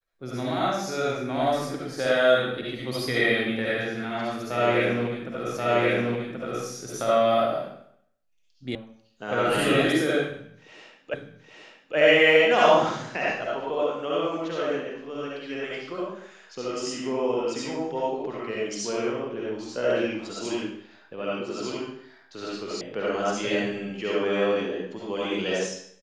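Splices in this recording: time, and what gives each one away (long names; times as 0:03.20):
0:05.57: the same again, the last 1.08 s
0:08.75: cut off before it has died away
0:11.14: the same again, the last 0.82 s
0:22.81: cut off before it has died away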